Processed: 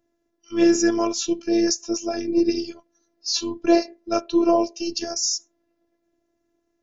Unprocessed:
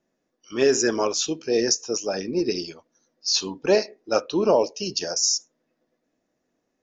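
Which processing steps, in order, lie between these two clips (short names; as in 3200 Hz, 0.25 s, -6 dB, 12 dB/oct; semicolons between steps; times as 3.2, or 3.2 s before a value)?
low shelf 310 Hz +11.5 dB; robotiser 340 Hz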